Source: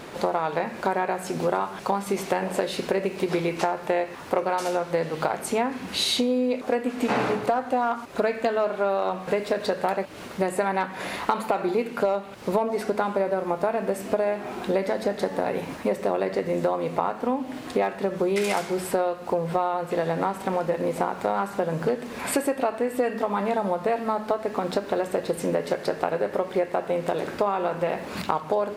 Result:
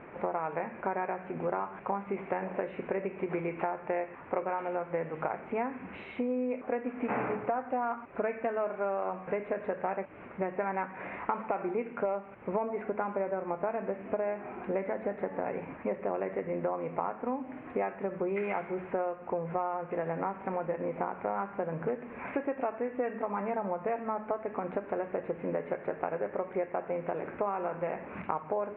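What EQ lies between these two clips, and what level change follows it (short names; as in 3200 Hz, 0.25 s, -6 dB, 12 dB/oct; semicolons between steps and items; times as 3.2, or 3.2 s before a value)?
elliptic low-pass 2400 Hz, stop band 50 dB; -7.5 dB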